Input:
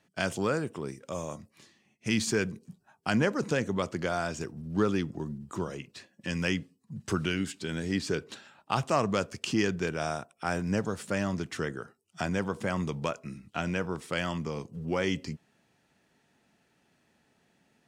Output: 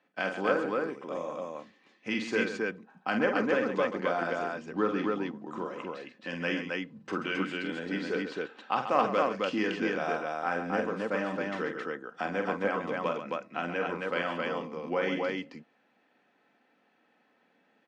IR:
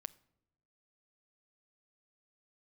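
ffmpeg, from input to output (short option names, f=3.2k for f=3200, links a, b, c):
-af "highpass=320,lowpass=2.5k,aecho=1:1:3.9:0.38,aecho=1:1:46.65|134.1|268.2:0.501|0.316|0.794"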